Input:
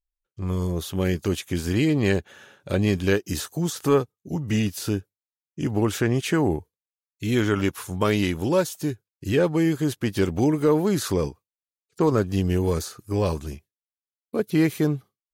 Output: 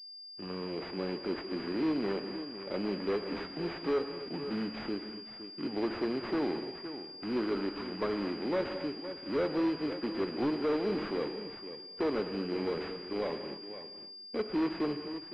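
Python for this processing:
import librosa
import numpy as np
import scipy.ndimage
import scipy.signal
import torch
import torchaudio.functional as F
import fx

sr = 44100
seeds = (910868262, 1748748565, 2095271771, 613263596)

p1 = fx.bit_reversed(x, sr, seeds[0], block=16)
p2 = scipy.signal.sosfilt(scipy.signal.butter(4, 220.0, 'highpass', fs=sr, output='sos'), p1)
p3 = fx.level_steps(p2, sr, step_db=21)
p4 = p2 + (p3 * librosa.db_to_amplitude(-2.0))
p5 = np.clip(p4, -10.0 ** (-15.5 / 20.0), 10.0 ** (-15.5 / 20.0))
p6 = p5 + fx.echo_single(p5, sr, ms=514, db=-13.0, dry=0)
p7 = fx.rev_gated(p6, sr, seeds[1], gate_ms=290, shape='flat', drr_db=8.5)
p8 = 10.0 ** (-15.5 / 20.0) * np.tanh(p7 / 10.0 ** (-15.5 / 20.0))
p9 = fx.pwm(p8, sr, carrier_hz=4800.0)
y = p9 * librosa.db_to_amplitude(-8.0)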